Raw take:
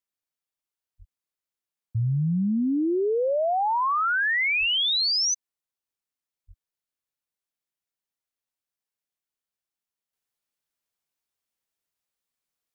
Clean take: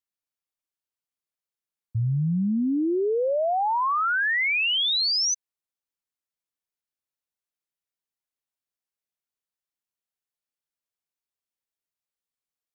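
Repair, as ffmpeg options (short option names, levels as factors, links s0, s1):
-filter_complex "[0:a]asplit=3[s0][s1][s2];[s0]afade=t=out:st=0.98:d=0.02[s3];[s1]highpass=f=140:w=0.5412,highpass=f=140:w=1.3066,afade=t=in:st=0.98:d=0.02,afade=t=out:st=1.1:d=0.02[s4];[s2]afade=t=in:st=1.1:d=0.02[s5];[s3][s4][s5]amix=inputs=3:normalize=0,asplit=3[s6][s7][s8];[s6]afade=t=out:st=4.59:d=0.02[s9];[s7]highpass=f=140:w=0.5412,highpass=f=140:w=1.3066,afade=t=in:st=4.59:d=0.02,afade=t=out:st=4.71:d=0.02[s10];[s8]afade=t=in:st=4.71:d=0.02[s11];[s9][s10][s11]amix=inputs=3:normalize=0,asplit=3[s12][s13][s14];[s12]afade=t=out:st=6.47:d=0.02[s15];[s13]highpass=f=140:w=0.5412,highpass=f=140:w=1.3066,afade=t=in:st=6.47:d=0.02,afade=t=out:st=6.59:d=0.02[s16];[s14]afade=t=in:st=6.59:d=0.02[s17];[s15][s16][s17]amix=inputs=3:normalize=0,asetnsamples=n=441:p=0,asendcmd='10.13 volume volume -5dB',volume=1"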